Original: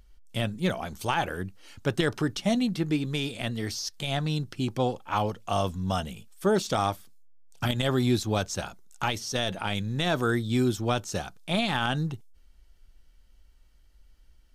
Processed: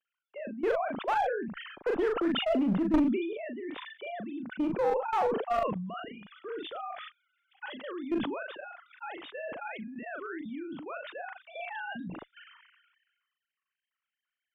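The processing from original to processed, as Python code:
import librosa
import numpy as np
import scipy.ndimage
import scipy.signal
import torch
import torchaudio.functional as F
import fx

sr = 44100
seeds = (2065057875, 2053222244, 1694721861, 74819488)

y = fx.sine_speech(x, sr)
y = scipy.signal.sosfilt(scipy.signal.butter(2, 1800.0, 'lowpass', fs=sr, output='sos'), y)
y = fx.peak_eq(y, sr, hz=480.0, db=fx.steps((0.0, 4.0), (5.59, -8.5)), octaves=2.6)
y = fx.level_steps(y, sr, step_db=13)
y = fx.clip_asym(y, sr, top_db=-26.0, bottom_db=-14.5)
y = fx.doubler(y, sr, ms=39.0, db=-7.0)
y = fx.sustainer(y, sr, db_per_s=40.0)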